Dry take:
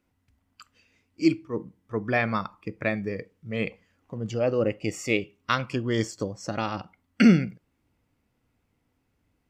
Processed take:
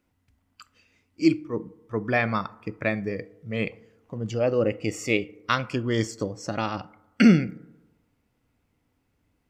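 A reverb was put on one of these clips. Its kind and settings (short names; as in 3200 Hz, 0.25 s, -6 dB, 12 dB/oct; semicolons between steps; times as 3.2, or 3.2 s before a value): FDN reverb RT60 1.1 s, low-frequency decay 0.85×, high-frequency decay 0.3×, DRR 18.5 dB; gain +1 dB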